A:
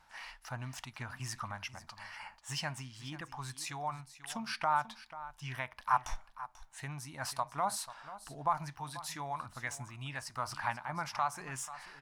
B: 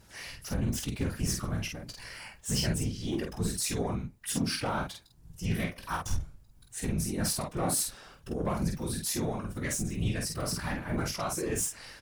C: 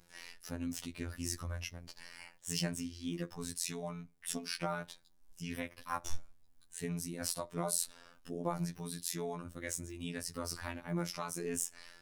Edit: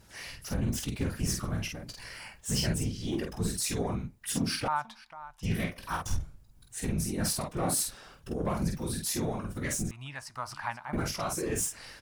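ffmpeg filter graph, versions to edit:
-filter_complex "[0:a]asplit=2[a][b];[1:a]asplit=3[c][d][e];[c]atrim=end=4.682[f];[a]atrim=start=4.678:end=5.432[g];[d]atrim=start=5.428:end=9.912[h];[b]atrim=start=9.908:end=10.932[i];[e]atrim=start=10.928[j];[f][g]acrossfade=d=0.004:c1=hsin:c2=hsin[k];[k][h]acrossfade=d=0.004:c1=hsin:c2=hsin[l];[l][i]acrossfade=d=0.004:c1=hsin:c2=hsin[m];[m][j]acrossfade=d=0.004:c1=hsin:c2=hsin"

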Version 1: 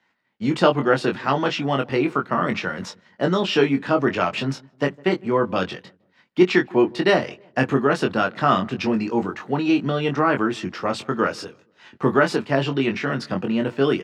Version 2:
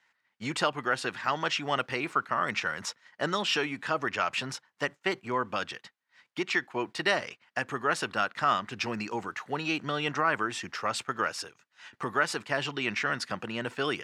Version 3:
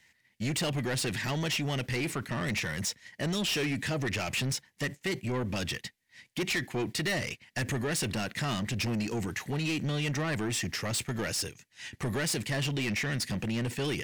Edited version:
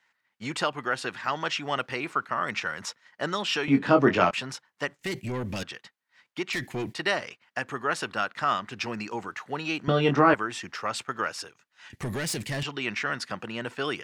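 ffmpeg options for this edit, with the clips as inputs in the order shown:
-filter_complex "[0:a]asplit=2[a][b];[2:a]asplit=3[c][d][e];[1:a]asplit=6[f][g][h][i][j][k];[f]atrim=end=3.682[l];[a]atrim=start=3.678:end=4.312[m];[g]atrim=start=4.308:end=4.992[n];[c]atrim=start=4.988:end=5.632[o];[h]atrim=start=5.628:end=6.532[p];[d]atrim=start=6.528:end=6.942[q];[i]atrim=start=6.938:end=9.882[r];[b]atrim=start=9.878:end=10.342[s];[j]atrim=start=10.338:end=11.902[t];[e]atrim=start=11.898:end=12.632[u];[k]atrim=start=12.628[v];[l][m]acrossfade=d=0.004:c1=hsin:c2=hsin[w];[w][n]acrossfade=d=0.004:c1=hsin:c2=hsin[x];[x][o]acrossfade=d=0.004:c1=hsin:c2=hsin[y];[y][p]acrossfade=d=0.004:c1=hsin:c2=hsin[z];[z][q]acrossfade=d=0.004:c1=hsin:c2=hsin[aa];[aa][r]acrossfade=d=0.004:c1=hsin:c2=hsin[ab];[ab][s]acrossfade=d=0.004:c1=hsin:c2=hsin[ac];[ac][t]acrossfade=d=0.004:c1=hsin:c2=hsin[ad];[ad][u]acrossfade=d=0.004:c1=hsin:c2=hsin[ae];[ae][v]acrossfade=d=0.004:c1=hsin:c2=hsin"

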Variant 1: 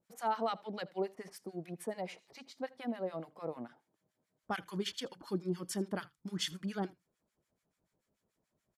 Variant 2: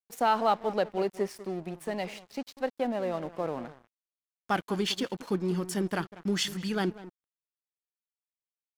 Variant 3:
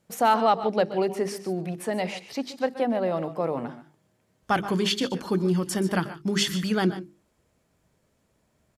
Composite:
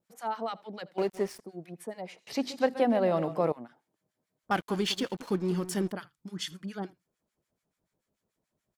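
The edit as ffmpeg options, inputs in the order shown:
-filter_complex "[1:a]asplit=2[a][b];[0:a]asplit=4[c][d][e][f];[c]atrim=end=0.982[g];[a]atrim=start=0.978:end=1.402[h];[d]atrim=start=1.398:end=2.272[i];[2:a]atrim=start=2.268:end=3.522[j];[e]atrim=start=3.518:end=4.512[k];[b]atrim=start=4.508:end=5.922[l];[f]atrim=start=5.918[m];[g][h]acrossfade=d=0.004:c1=hsin:c2=hsin[n];[n][i]acrossfade=d=0.004:c1=hsin:c2=hsin[o];[o][j]acrossfade=d=0.004:c1=hsin:c2=hsin[p];[p][k]acrossfade=d=0.004:c1=hsin:c2=hsin[q];[q][l]acrossfade=d=0.004:c1=hsin:c2=hsin[r];[r][m]acrossfade=d=0.004:c1=hsin:c2=hsin"

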